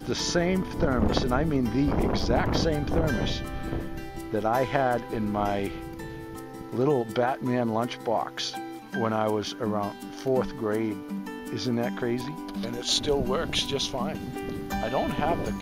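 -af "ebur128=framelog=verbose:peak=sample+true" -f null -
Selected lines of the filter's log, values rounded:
Integrated loudness:
  I:         -27.7 LUFS
  Threshold: -37.9 LUFS
Loudness range:
  LRA:         3.4 LU
  Threshold: -48.2 LUFS
  LRA low:   -29.5 LUFS
  LRA high:  -26.1 LUFS
Sample peak:
  Peak:       -7.9 dBFS
True peak:
  Peak:       -7.9 dBFS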